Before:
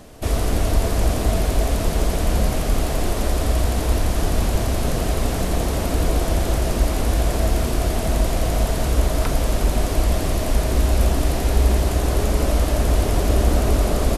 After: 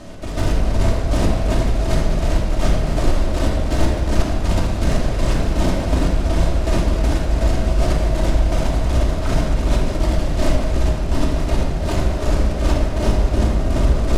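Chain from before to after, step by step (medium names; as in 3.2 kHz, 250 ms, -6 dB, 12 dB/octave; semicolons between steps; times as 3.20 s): low-pass 7.1 kHz 12 dB/octave; in parallel at +2 dB: compressor with a negative ratio -22 dBFS; on the sum: hard clipper -11 dBFS, distortion -14 dB; square tremolo 2.7 Hz, depth 60%, duty 40%; simulated room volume 1600 m³, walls mixed, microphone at 2.7 m; trim -6 dB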